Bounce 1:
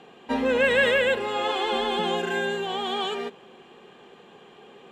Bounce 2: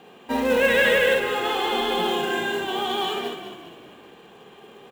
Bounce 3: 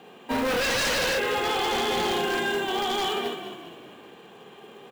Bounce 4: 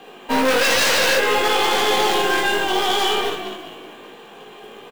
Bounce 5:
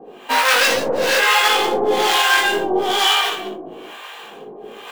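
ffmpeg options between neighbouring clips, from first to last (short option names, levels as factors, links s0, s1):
-filter_complex "[0:a]asplit=2[s0][s1];[s1]aecho=0:1:22|33|54:0.168|0.15|0.668[s2];[s0][s2]amix=inputs=2:normalize=0,acrusher=bits=5:mode=log:mix=0:aa=0.000001,asplit=2[s3][s4];[s4]asplit=5[s5][s6][s7][s8][s9];[s5]adelay=204,afreqshift=-33,volume=0.335[s10];[s6]adelay=408,afreqshift=-66,volume=0.157[s11];[s7]adelay=612,afreqshift=-99,volume=0.0741[s12];[s8]adelay=816,afreqshift=-132,volume=0.0347[s13];[s9]adelay=1020,afreqshift=-165,volume=0.0164[s14];[s10][s11][s12][s13][s14]amix=inputs=5:normalize=0[s15];[s3][s15]amix=inputs=2:normalize=0"
-af "highpass=89,aeval=exprs='0.1*(abs(mod(val(0)/0.1+3,4)-2)-1)':c=same"
-filter_complex "[0:a]highpass=f=300:p=1,aeval=exprs='0.15*(cos(1*acos(clip(val(0)/0.15,-1,1)))-cos(1*PI/2))+0.0106*(cos(8*acos(clip(val(0)/0.15,-1,1)))-cos(8*PI/2))':c=same,asplit=2[s0][s1];[s1]adelay=19,volume=0.668[s2];[s0][s2]amix=inputs=2:normalize=0,volume=2.11"
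-filter_complex "[0:a]lowshelf=f=130:g=-12,areverse,acompressor=mode=upward:threshold=0.0224:ratio=2.5,areverse,acrossover=split=710[s0][s1];[s0]aeval=exprs='val(0)*(1-1/2+1/2*cos(2*PI*1.1*n/s))':c=same[s2];[s1]aeval=exprs='val(0)*(1-1/2-1/2*cos(2*PI*1.1*n/s))':c=same[s3];[s2][s3]amix=inputs=2:normalize=0,volume=2.37"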